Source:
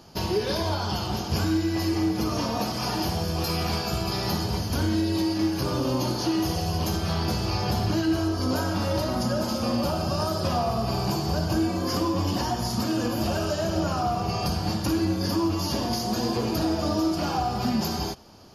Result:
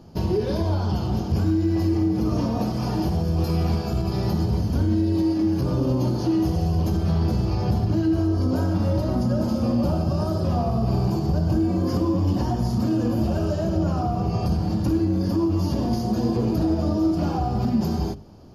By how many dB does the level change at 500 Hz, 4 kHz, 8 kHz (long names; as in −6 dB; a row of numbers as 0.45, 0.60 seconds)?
+1.0 dB, −9.5 dB, can't be measured